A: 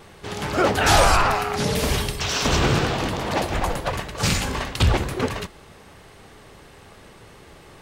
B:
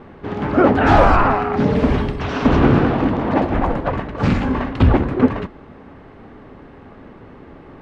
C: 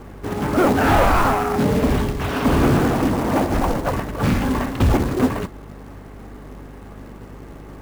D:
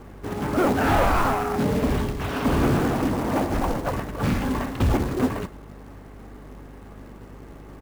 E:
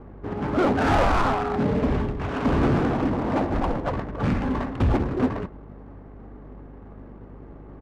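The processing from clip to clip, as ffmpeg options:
-af "lowpass=1.6k,equalizer=f=260:w=2.5:g=10.5,volume=4.5dB"
-af "asoftclip=type=tanh:threshold=-10.5dB,acrusher=bits=4:mode=log:mix=0:aa=0.000001,aeval=exprs='val(0)+0.0112*(sin(2*PI*50*n/s)+sin(2*PI*2*50*n/s)/2+sin(2*PI*3*50*n/s)/3+sin(2*PI*4*50*n/s)/4+sin(2*PI*5*50*n/s)/5)':c=same"
-af "aecho=1:1:103:0.106,volume=-4.5dB"
-af "adynamicsmooth=sensitivity=2.5:basefreq=1.3k"

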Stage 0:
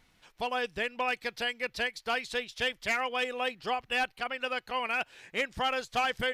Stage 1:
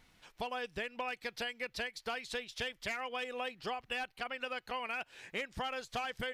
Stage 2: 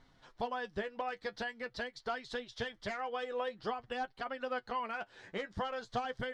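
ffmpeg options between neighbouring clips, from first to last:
-af "acompressor=threshold=-36dB:ratio=5"
-af "lowpass=4.1k,equalizer=f=2.5k:t=o:w=0.55:g=-14,flanger=delay=7.3:depth=3.1:regen=39:speed=0.47:shape=sinusoidal,volume=6.5dB"

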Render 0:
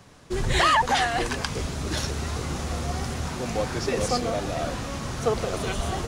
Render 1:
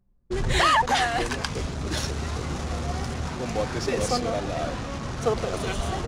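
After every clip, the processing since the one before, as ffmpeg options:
-af "anlmdn=3.98"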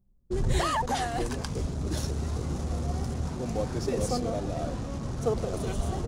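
-af "equalizer=f=2.2k:t=o:w=2.9:g=-12.5"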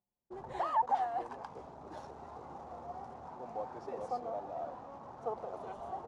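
-af "bandpass=f=850:t=q:w=3.4:csg=0,volume=1dB"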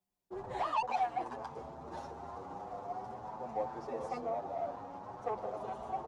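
-filter_complex "[0:a]acrossover=split=180|390|3600[a][b][c][d];[c]asoftclip=type=tanh:threshold=-31.5dB[e];[a][b][e][d]amix=inputs=4:normalize=0,asplit=2[f][g];[g]adelay=8.1,afreqshift=0.42[h];[f][h]amix=inputs=2:normalize=1,volume=6dB"

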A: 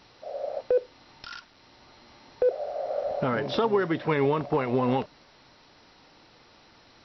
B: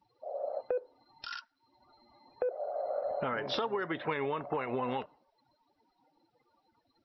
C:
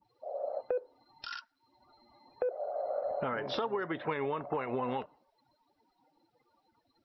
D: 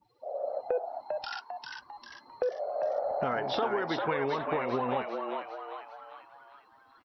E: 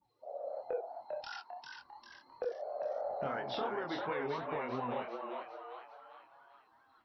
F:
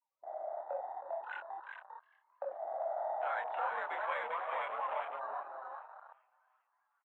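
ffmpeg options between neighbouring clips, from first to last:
-af "afftdn=nr=30:nf=-48,lowshelf=f=430:g=-11.5,acompressor=threshold=-31dB:ratio=4,volume=1dB"
-af "adynamicequalizer=threshold=0.00562:dfrequency=1700:dqfactor=0.7:tfrequency=1700:tqfactor=0.7:attack=5:release=100:ratio=0.375:range=2:mode=cutabove:tftype=highshelf"
-filter_complex "[0:a]asplit=7[a][b][c][d][e][f][g];[b]adelay=398,afreqshift=110,volume=-4.5dB[h];[c]adelay=796,afreqshift=220,volume=-10.9dB[i];[d]adelay=1194,afreqshift=330,volume=-17.3dB[j];[e]adelay=1592,afreqshift=440,volume=-23.6dB[k];[f]adelay=1990,afreqshift=550,volume=-30dB[l];[g]adelay=2388,afreqshift=660,volume=-36.4dB[m];[a][h][i][j][k][l][m]amix=inputs=7:normalize=0,volume=2.5dB"
-af "flanger=delay=22.5:depth=5.7:speed=2.9,volume=-4dB"
-filter_complex "[0:a]highpass=f=580:t=q:w=0.5412,highpass=f=580:t=q:w=1.307,lowpass=f=2.7k:t=q:w=0.5176,lowpass=f=2.7k:t=q:w=0.7071,lowpass=f=2.7k:t=q:w=1.932,afreqshift=62,asplit=2[a][b];[b]adelay=315,lowpass=f=1.8k:p=1,volume=-11dB,asplit=2[c][d];[d]adelay=315,lowpass=f=1.8k:p=1,volume=0.31,asplit=2[e][f];[f]adelay=315,lowpass=f=1.8k:p=1,volume=0.31[g];[a][c][e][g]amix=inputs=4:normalize=0,afwtdn=0.00447,volume=3dB"

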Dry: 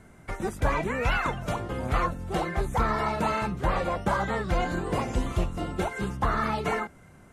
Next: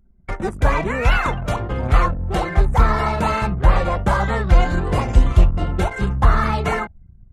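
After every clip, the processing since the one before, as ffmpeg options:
-af "asubboost=boost=3:cutoff=130,bandreject=f=163.7:t=h:w=4,bandreject=f=327.4:t=h:w=4,bandreject=f=491.1:t=h:w=4,bandreject=f=654.8:t=h:w=4,bandreject=f=818.5:t=h:w=4,bandreject=f=982.2:t=h:w=4,bandreject=f=1.1459k:t=h:w=4,anlmdn=0.631,volume=7dB"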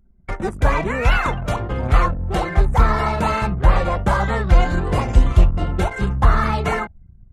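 -af anull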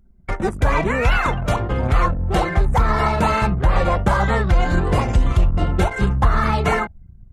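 -af "alimiter=limit=-9dB:level=0:latency=1:release=137,volume=2.5dB"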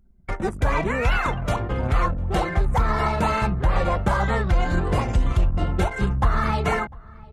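-filter_complex "[0:a]asplit=2[a][b];[b]adelay=699.7,volume=-23dB,highshelf=f=4k:g=-15.7[c];[a][c]amix=inputs=2:normalize=0,volume=-4dB"

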